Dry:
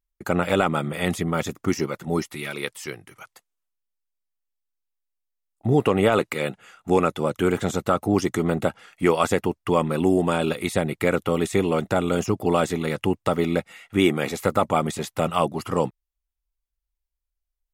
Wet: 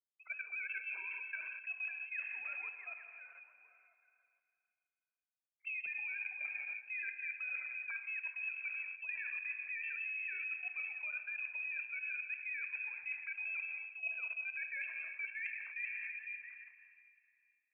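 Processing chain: formants replaced by sine waves; Schroeder reverb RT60 2.3 s, combs from 32 ms, DRR 5.5 dB; level held to a coarse grid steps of 12 dB; on a send: repeats whose band climbs or falls 168 ms, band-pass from 200 Hz, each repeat 0.7 oct, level -6 dB; on the sum: frequency inversion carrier 2.9 kHz; differentiator; reverse; compression 8:1, threshold -42 dBFS, peak gain reduction 20.5 dB; reverse; trim +3 dB

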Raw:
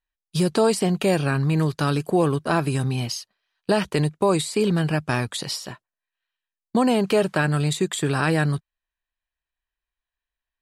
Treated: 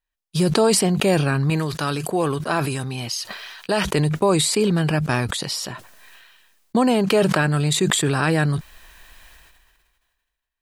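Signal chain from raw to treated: 1.50–3.91 s: bass shelf 420 Hz -7.5 dB; decay stretcher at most 33 dB/s; trim +1.5 dB

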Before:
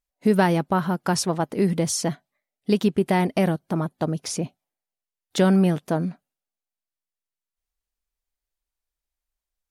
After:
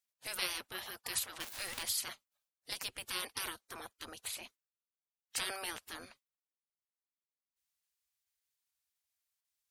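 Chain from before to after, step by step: 1.40–1.83 s: jump at every zero crossing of -32.5 dBFS; amplifier tone stack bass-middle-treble 10-0-10; spectral gate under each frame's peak -15 dB weak; trim +4 dB

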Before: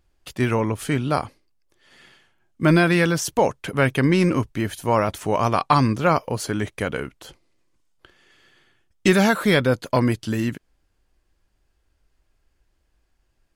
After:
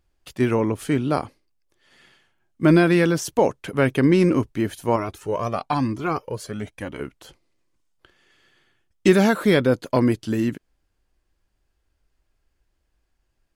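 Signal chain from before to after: dynamic bell 330 Hz, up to +7 dB, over -32 dBFS, Q 0.86; 4.96–7.00 s: Shepard-style flanger rising 1 Hz; trim -3.5 dB

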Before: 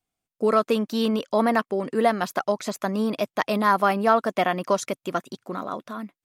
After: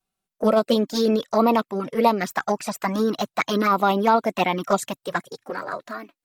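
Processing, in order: touch-sensitive flanger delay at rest 5.2 ms, full sweep at -17 dBFS; formant shift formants +3 st; trim +4.5 dB

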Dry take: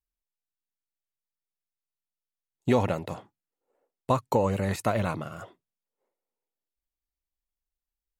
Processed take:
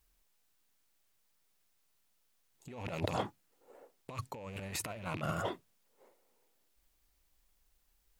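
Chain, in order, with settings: rattle on loud lows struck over -33 dBFS, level -24 dBFS; 2.84–4.28 s: dynamic bell 5.1 kHz, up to +4 dB, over -50 dBFS, Q 0.95; peak limiter -28.5 dBFS, peak gain reduction 17 dB; compressor with a negative ratio -45 dBFS, ratio -0.5; trim +8.5 dB

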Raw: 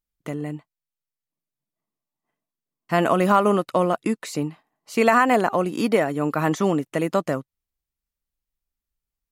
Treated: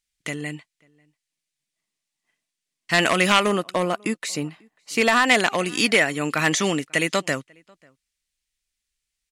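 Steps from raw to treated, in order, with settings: echo from a far wall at 93 m, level -29 dB; hard clipper -11 dBFS, distortion -19 dB; high-order bell 4.1 kHz +15.5 dB 2.9 oct, from 3.45 s +8.5 dB, from 5.24 s +15.5 dB; trim -2.5 dB

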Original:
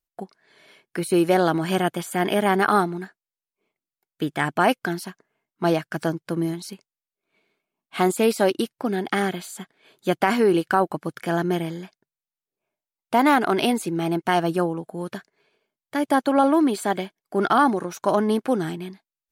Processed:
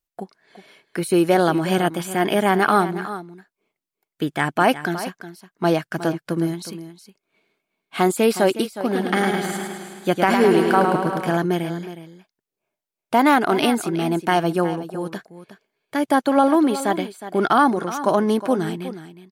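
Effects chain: delay 364 ms -13 dB; 8.75–11.37 s: modulated delay 106 ms, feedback 65%, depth 51 cents, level -5 dB; trim +2 dB

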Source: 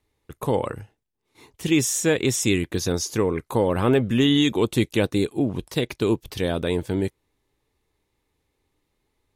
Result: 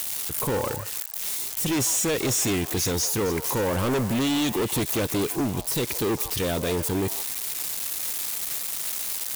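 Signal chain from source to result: zero-crossing glitches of -22 dBFS; treble shelf 3.8 kHz +5.5 dB; overload inside the chain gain 24 dB; on a send: repeats whose band climbs or falls 154 ms, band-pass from 820 Hz, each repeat 1.4 oct, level -6 dB; on the sum: trim +2 dB

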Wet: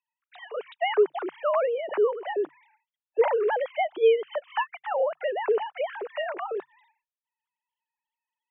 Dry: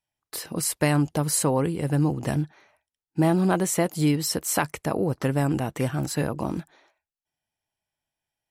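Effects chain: formants replaced by sine waves; frequency shift +140 Hz; trim -2 dB

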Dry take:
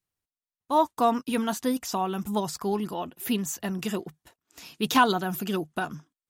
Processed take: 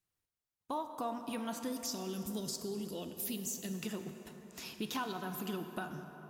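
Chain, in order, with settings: 1.72–3.74 s: FFT filter 510 Hz 0 dB, 860 Hz -17 dB, 5 kHz +9 dB, 8.1 kHz +6 dB; compression 4:1, threshold -38 dBFS, peak gain reduction 19 dB; plate-style reverb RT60 4.3 s, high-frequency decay 0.45×, DRR 6 dB; trim -1 dB

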